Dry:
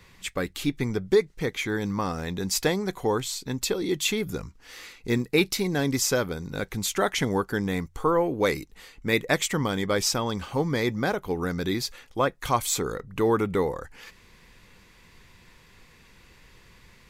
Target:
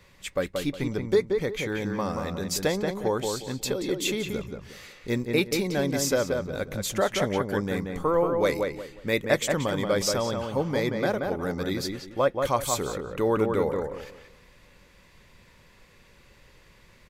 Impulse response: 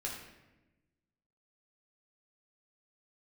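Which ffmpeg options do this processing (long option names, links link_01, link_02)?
-filter_complex "[0:a]equalizer=frequency=570:width=6.3:gain=10,asplit=2[link_01][link_02];[link_02]adelay=180,lowpass=frequency=2400:poles=1,volume=-4dB,asplit=2[link_03][link_04];[link_04]adelay=180,lowpass=frequency=2400:poles=1,volume=0.28,asplit=2[link_05][link_06];[link_06]adelay=180,lowpass=frequency=2400:poles=1,volume=0.28,asplit=2[link_07][link_08];[link_08]adelay=180,lowpass=frequency=2400:poles=1,volume=0.28[link_09];[link_03][link_05][link_07][link_09]amix=inputs=4:normalize=0[link_10];[link_01][link_10]amix=inputs=2:normalize=0,volume=-3dB"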